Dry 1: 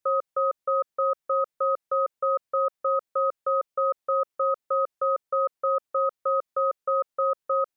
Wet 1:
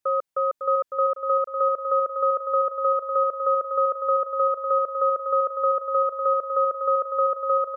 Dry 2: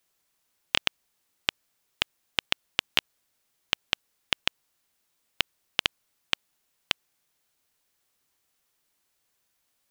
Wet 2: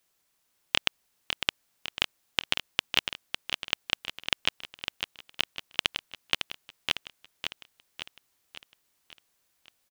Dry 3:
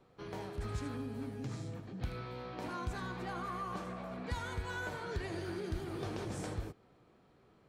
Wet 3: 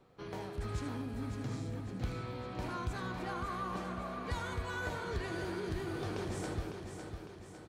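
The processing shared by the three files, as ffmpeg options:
-af "aeval=exprs='0.891*(cos(1*acos(clip(val(0)/0.891,-1,1)))-cos(1*PI/2))+0.0398*(cos(5*acos(clip(val(0)/0.891,-1,1)))-cos(5*PI/2))':c=same,aecho=1:1:554|1108|1662|2216|2770|3324:0.447|0.232|0.121|0.0628|0.0327|0.017,volume=-1dB"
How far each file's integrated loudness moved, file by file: +3.0, -1.0, +1.5 LU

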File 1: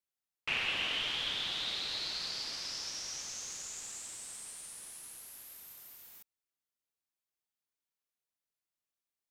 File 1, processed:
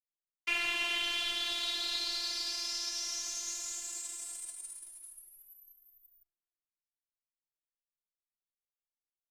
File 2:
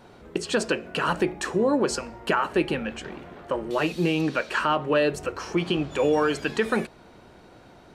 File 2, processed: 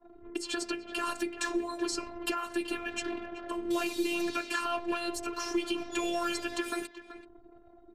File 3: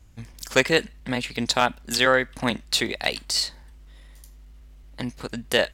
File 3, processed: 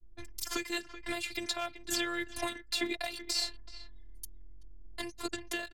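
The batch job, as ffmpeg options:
-filter_complex "[0:a]anlmdn=0.0398,highshelf=f=4.4k:g=3.5,aecho=1:1:5.3:0.66,adynamicequalizer=threshold=0.0112:dfrequency=100:dqfactor=1.3:tfrequency=100:tqfactor=1.3:attack=5:release=100:ratio=0.375:range=1.5:mode=boostabove:tftype=bell,acrossover=split=210|2700|5600[a][b][c][d];[a]acompressor=threshold=-38dB:ratio=4[e];[b]acompressor=threshold=-27dB:ratio=4[f];[c]acompressor=threshold=-37dB:ratio=4[g];[d]acompressor=threshold=-45dB:ratio=4[h];[e][f][g][h]amix=inputs=4:normalize=0,alimiter=limit=-20dB:level=0:latency=1:release=496,crystalizer=i=1:c=0,afreqshift=-30,asplit=2[i][j];[j]adelay=380,highpass=300,lowpass=3.4k,asoftclip=type=hard:threshold=-25dB,volume=-12dB[k];[i][k]amix=inputs=2:normalize=0,afftfilt=real='hypot(re,im)*cos(PI*b)':imag='0':win_size=512:overlap=0.75,volume=2dB"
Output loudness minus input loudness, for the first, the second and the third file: +2.5, -8.0, -11.5 LU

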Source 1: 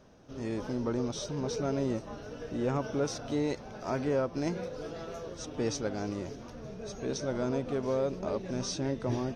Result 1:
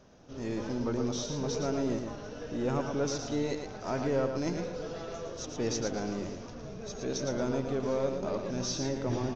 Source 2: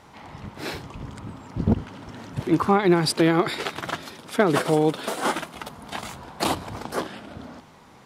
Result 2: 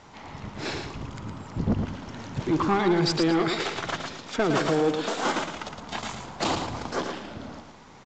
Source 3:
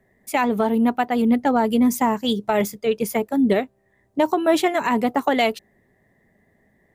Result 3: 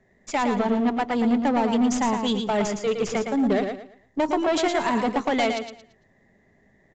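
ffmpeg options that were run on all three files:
-af "aeval=exprs='if(lt(val(0),0),0.708*val(0),val(0))':c=same,aemphasis=mode=production:type=50fm,aeval=exprs='0.596*(cos(1*acos(clip(val(0)/0.596,-1,1)))-cos(1*PI/2))+0.0473*(cos(4*acos(clip(val(0)/0.596,-1,1)))-cos(4*PI/2))':c=same,aresample=16000,asoftclip=type=tanh:threshold=-18.5dB,aresample=44100,highshelf=f=4.4k:g=-6.5,aecho=1:1:113|226|339|452:0.501|0.14|0.0393|0.011,volume=1.5dB"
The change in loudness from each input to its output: +0.5, -3.0, -3.0 LU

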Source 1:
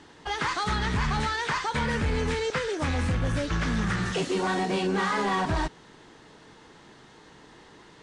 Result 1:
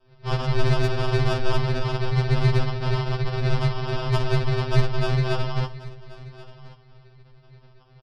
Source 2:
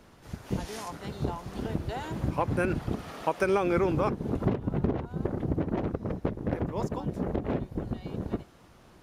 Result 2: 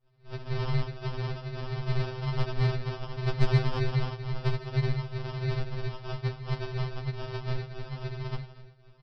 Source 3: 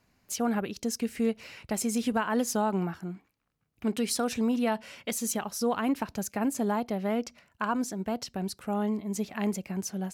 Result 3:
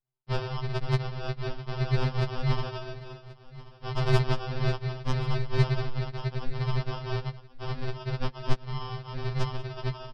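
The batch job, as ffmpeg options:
-filter_complex "[0:a]bandreject=f=60:t=h:w=6,bandreject=f=120:t=h:w=6,bandreject=f=180:t=h:w=6,bandreject=f=240:t=h:w=6,bandreject=f=300:t=h:w=6,bandreject=f=360:t=h:w=6,bandreject=f=420:t=h:w=6,bandreject=f=480:t=h:w=6,agate=range=-33dB:threshold=-43dB:ratio=3:detection=peak,adynamicequalizer=threshold=0.0112:dfrequency=360:dqfactor=0.88:tfrequency=360:tqfactor=0.88:attack=5:release=100:ratio=0.375:range=1.5:mode=cutabove:tftype=bell,aexciter=amount=8.3:drive=8.7:freq=2.4k,aresample=11025,acrusher=samples=40:mix=1:aa=0.000001,aresample=44100,asoftclip=type=tanh:threshold=-11.5dB,asplit=2[a][b];[b]aecho=0:1:1082:0.112[c];[a][c]amix=inputs=2:normalize=0,afftfilt=real='re*2.45*eq(mod(b,6),0)':imag='im*2.45*eq(mod(b,6),0)':win_size=2048:overlap=0.75,volume=2.5dB"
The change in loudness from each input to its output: +3.0, -1.0, -1.0 LU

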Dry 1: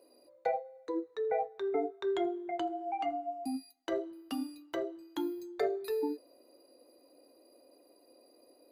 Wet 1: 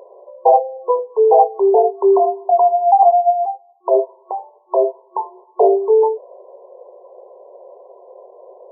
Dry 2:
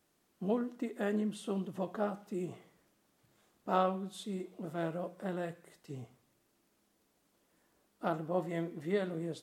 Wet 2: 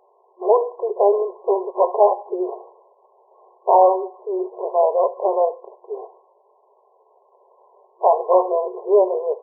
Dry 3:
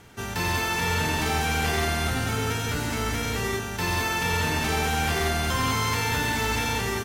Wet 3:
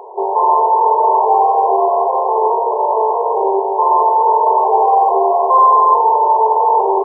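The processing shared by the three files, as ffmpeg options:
-af "apsyclip=27.5dB,afftfilt=real='re*between(b*sr/4096,360,1100)':imag='im*between(b*sr/4096,360,1100)':win_size=4096:overlap=0.75,tiltshelf=f=680:g=-6.5,volume=-3.5dB"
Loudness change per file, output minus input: +21.0, +17.5, +12.5 LU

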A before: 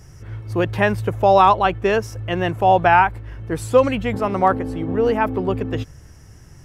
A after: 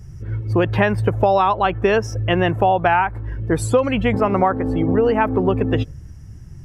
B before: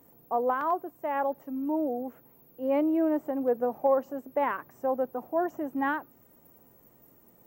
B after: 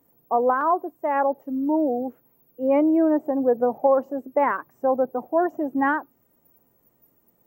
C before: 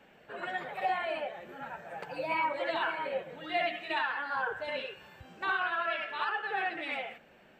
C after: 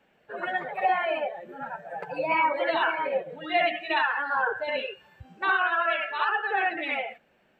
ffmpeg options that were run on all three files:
-af "afftdn=nr=13:nf=-41,acompressor=threshold=-20dB:ratio=6,volume=7dB"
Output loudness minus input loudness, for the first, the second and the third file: 0.0, +6.5, +7.0 LU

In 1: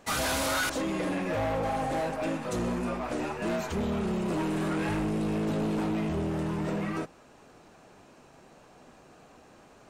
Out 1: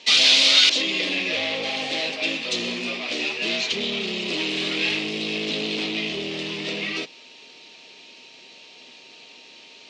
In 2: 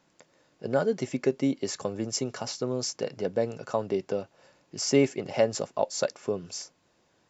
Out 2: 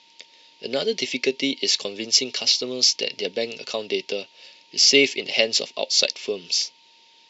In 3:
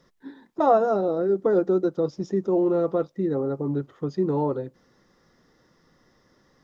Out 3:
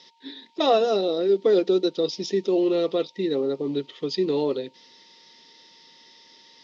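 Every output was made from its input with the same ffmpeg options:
-af "aeval=exprs='val(0)+0.002*sin(2*PI*920*n/s)':c=same,aexciter=amount=13.4:drive=7.1:freq=2.3k,highpass=230,equalizer=f=250:t=q:w=4:g=3,equalizer=f=420:t=q:w=4:g=5,equalizer=f=890:t=q:w=4:g=-6,lowpass=f=4.2k:w=0.5412,lowpass=f=4.2k:w=1.3066,volume=-1dB"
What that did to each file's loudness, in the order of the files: +9.0, +8.0, +0.5 LU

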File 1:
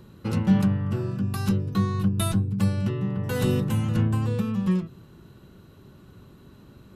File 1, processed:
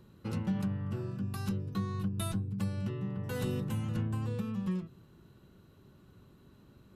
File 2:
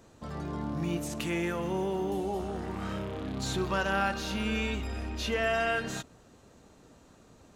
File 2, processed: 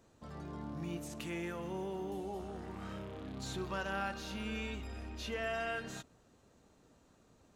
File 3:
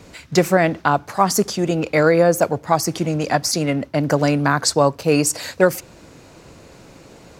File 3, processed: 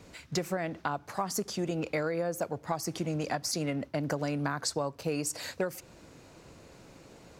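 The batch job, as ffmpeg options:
-af "acompressor=threshold=-19dB:ratio=6,volume=-9dB"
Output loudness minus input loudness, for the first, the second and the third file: -10.5, -9.0, -15.0 LU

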